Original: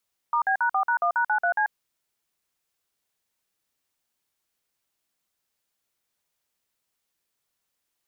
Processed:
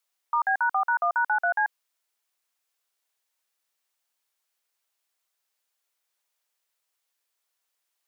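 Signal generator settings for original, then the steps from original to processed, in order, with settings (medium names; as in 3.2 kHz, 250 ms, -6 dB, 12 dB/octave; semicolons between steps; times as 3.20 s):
DTMF "*B#4#1#93C", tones 89 ms, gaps 49 ms, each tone -22.5 dBFS
high-pass 540 Hz 12 dB/octave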